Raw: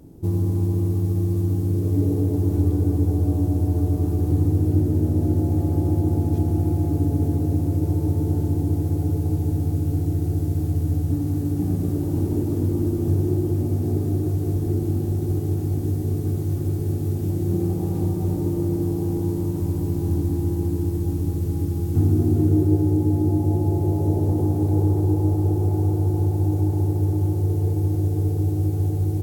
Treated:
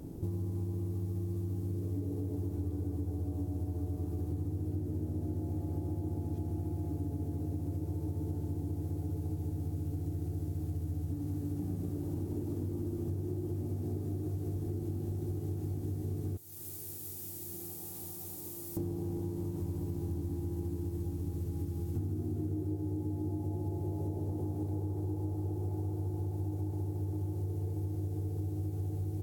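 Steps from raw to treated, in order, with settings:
0:16.37–0:18.77: first-order pre-emphasis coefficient 0.97
downward compressor 5 to 1, threshold −36 dBFS, peak gain reduction 20 dB
level +1 dB

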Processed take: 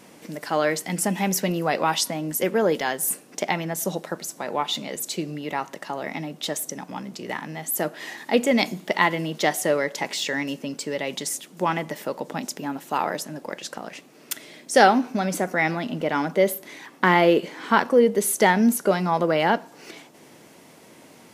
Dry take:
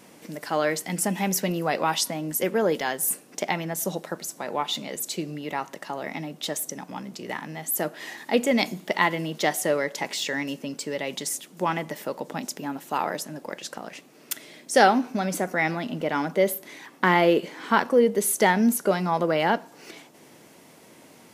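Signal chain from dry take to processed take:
high-shelf EQ 11,000 Hz −3.5 dB
level +2 dB

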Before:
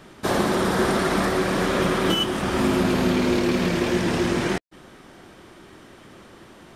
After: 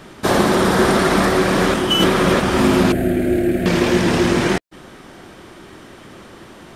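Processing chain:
0:01.74–0:02.40: reverse
0:02.92–0:03.66: drawn EQ curve 110 Hz 0 dB, 220 Hz −8 dB, 330 Hz +2 dB, 470 Hz −11 dB, 680 Hz +1 dB, 990 Hz −30 dB, 1,600 Hz −5 dB, 5,600 Hz −24 dB, 8,300 Hz −6 dB, 14,000 Hz +1 dB
level +6.5 dB

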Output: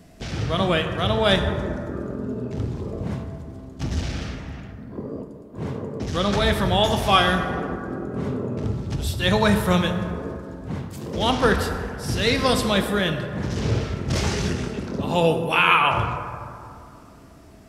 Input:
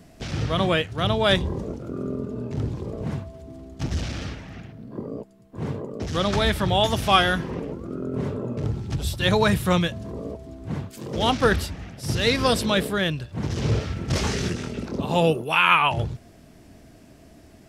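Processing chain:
dense smooth reverb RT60 2.5 s, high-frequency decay 0.35×, DRR 5 dB

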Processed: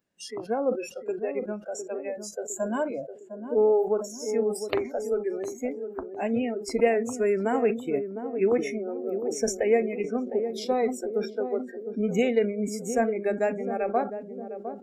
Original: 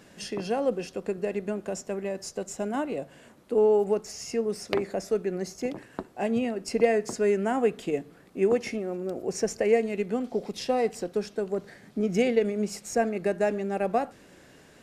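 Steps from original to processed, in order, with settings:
noise reduction from a noise print of the clip's start 28 dB
0:02.48–0:02.91: EQ curve with evenly spaced ripples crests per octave 1.4, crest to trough 12 dB
on a send: feedback echo with a band-pass in the loop 707 ms, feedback 59%, band-pass 300 Hz, level −7.5 dB
on the sum: level that may fall only so fast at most 130 dB per second

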